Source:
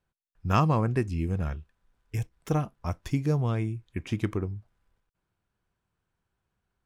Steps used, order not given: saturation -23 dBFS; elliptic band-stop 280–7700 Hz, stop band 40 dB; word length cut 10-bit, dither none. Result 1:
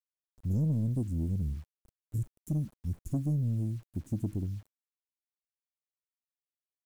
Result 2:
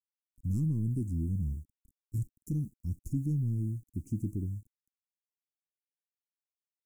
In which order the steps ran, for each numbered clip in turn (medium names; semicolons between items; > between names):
elliptic band-stop > word length cut > saturation; word length cut > saturation > elliptic band-stop